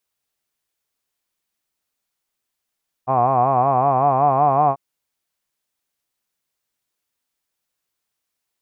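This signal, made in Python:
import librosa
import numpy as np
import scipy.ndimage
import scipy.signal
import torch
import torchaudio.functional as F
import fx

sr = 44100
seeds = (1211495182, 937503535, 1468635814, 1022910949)

y = fx.vowel(sr, seeds[0], length_s=1.69, word='hod', hz=125.0, glide_st=2.5, vibrato_hz=5.3, vibrato_st=1.1)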